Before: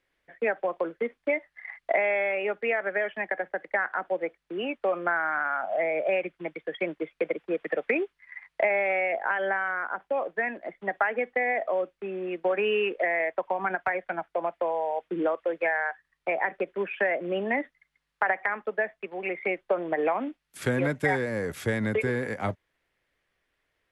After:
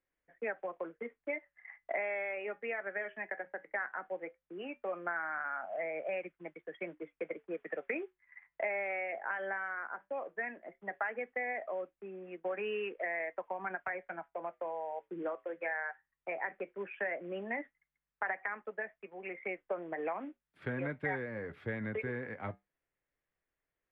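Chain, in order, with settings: dynamic bell 2.1 kHz, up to +6 dB, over -42 dBFS, Q 0.79; flange 0.16 Hz, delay 3.7 ms, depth 5.1 ms, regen -75%; distance through air 450 m; trim -6.5 dB

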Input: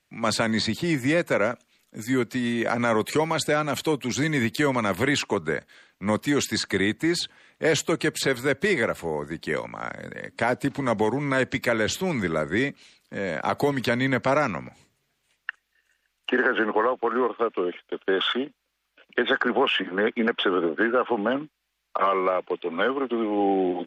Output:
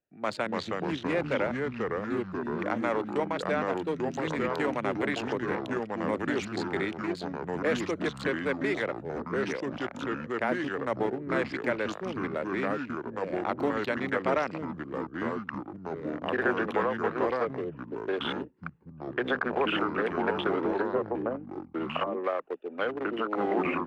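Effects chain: local Wiener filter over 41 samples; 20.71–22.24 s: low-pass that closes with the level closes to 600 Hz, closed at -19.5 dBFS; tone controls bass -12 dB, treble -9 dB; ever faster or slower copies 243 ms, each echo -3 st, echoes 3; trim -4 dB

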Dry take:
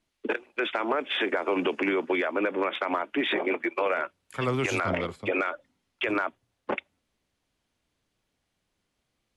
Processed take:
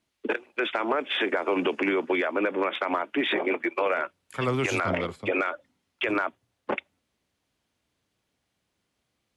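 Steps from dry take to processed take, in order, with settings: high-pass 58 Hz; trim +1 dB

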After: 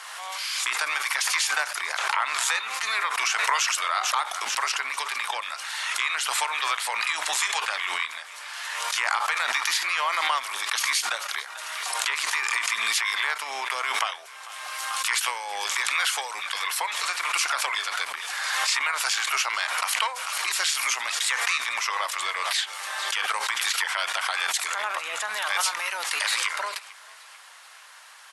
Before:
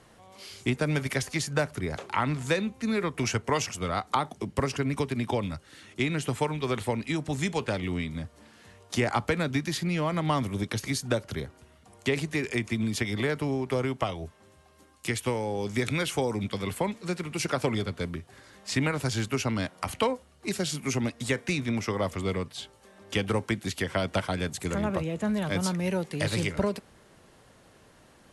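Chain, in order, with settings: harmony voices -12 st -6 dB, -5 st -15 dB; in parallel at +1.5 dB: compression, threshold -35 dBFS, peak gain reduction 15 dB; on the sum: high-pass 1 kHz 24 dB/octave; on a send: frequency-shifting echo 442 ms, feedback 48%, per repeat +47 Hz, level -23.5 dB; on the sum: peak limiter -19.5 dBFS, peak gain reduction 10.5 dB; swell ahead of each attack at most 24 dB/s; trim +6 dB

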